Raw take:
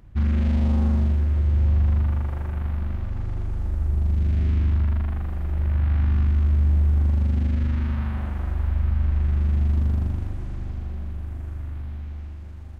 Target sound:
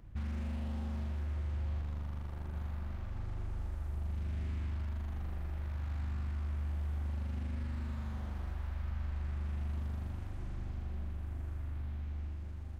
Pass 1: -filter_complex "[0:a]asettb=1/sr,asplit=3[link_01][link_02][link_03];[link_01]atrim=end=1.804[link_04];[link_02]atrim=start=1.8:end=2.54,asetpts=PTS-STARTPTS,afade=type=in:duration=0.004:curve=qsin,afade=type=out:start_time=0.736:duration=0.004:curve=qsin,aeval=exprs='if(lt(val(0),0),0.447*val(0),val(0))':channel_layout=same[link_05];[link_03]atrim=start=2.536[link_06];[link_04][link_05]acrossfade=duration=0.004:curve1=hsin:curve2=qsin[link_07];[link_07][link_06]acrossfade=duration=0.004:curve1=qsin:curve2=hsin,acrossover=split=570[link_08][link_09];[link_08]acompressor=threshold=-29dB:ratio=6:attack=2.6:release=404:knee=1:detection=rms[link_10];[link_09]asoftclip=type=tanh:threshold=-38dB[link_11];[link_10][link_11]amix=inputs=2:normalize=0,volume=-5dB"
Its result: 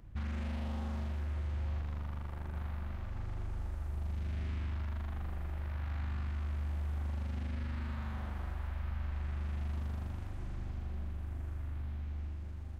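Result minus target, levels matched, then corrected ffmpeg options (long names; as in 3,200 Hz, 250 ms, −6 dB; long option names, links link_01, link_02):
soft clipping: distortion −8 dB
-filter_complex "[0:a]asettb=1/sr,asplit=3[link_01][link_02][link_03];[link_01]atrim=end=1.804[link_04];[link_02]atrim=start=1.8:end=2.54,asetpts=PTS-STARTPTS,afade=type=in:duration=0.004:curve=qsin,afade=type=out:start_time=0.736:duration=0.004:curve=qsin,aeval=exprs='if(lt(val(0),0),0.447*val(0),val(0))':channel_layout=same[link_05];[link_03]atrim=start=2.536[link_06];[link_04][link_05]acrossfade=duration=0.004:curve1=hsin:curve2=qsin[link_07];[link_07][link_06]acrossfade=duration=0.004:curve1=qsin:curve2=hsin,acrossover=split=570[link_08][link_09];[link_08]acompressor=threshold=-29dB:ratio=6:attack=2.6:release=404:knee=1:detection=rms[link_10];[link_09]asoftclip=type=tanh:threshold=-47dB[link_11];[link_10][link_11]amix=inputs=2:normalize=0,volume=-5dB"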